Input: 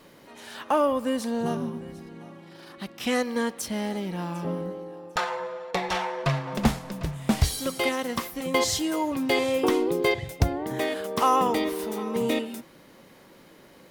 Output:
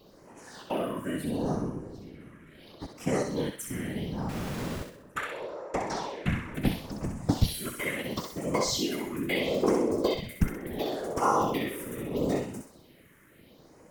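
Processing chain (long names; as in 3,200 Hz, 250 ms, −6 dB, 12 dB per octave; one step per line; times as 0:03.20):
all-pass phaser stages 4, 0.74 Hz, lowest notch 690–3,700 Hz
0:04.29–0:04.83: comparator with hysteresis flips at −35 dBFS
random phases in short frames
on a send: feedback echo with a high-pass in the loop 64 ms, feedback 46%, high-pass 1,100 Hz, level −4 dB
on the sum: level −3 dB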